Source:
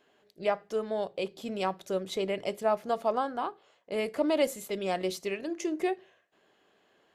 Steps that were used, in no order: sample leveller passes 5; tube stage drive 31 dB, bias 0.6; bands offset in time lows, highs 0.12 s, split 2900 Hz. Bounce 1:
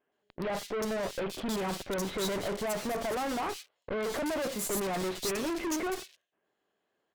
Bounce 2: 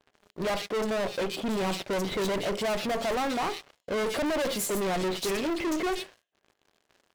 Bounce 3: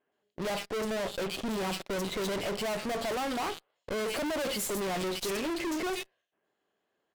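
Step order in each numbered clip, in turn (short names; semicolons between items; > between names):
sample leveller > tube stage > bands offset in time; tube stage > bands offset in time > sample leveller; bands offset in time > sample leveller > tube stage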